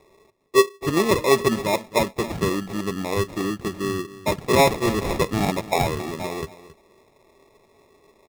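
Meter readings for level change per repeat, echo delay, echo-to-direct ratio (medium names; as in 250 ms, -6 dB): no regular repeats, 271 ms, -16.5 dB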